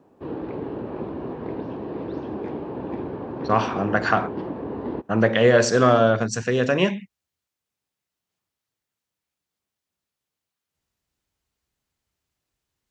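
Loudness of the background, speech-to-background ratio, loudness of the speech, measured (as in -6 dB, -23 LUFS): -32.0 LUFS, 11.5 dB, -20.5 LUFS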